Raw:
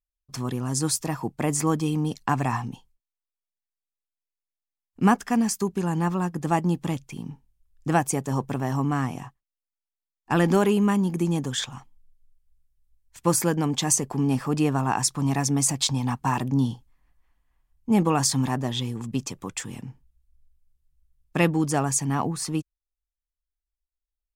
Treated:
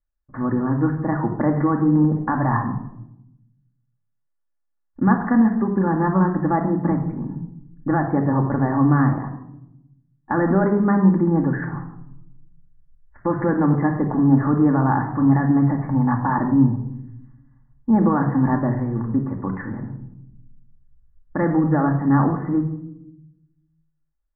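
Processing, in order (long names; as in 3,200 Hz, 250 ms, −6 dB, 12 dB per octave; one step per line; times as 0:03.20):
Butterworth low-pass 1,900 Hz 96 dB per octave
brickwall limiter −17.5 dBFS, peak gain reduction 9.5 dB
rectangular room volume 2,200 cubic metres, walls furnished, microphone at 2.4 metres
level +5.5 dB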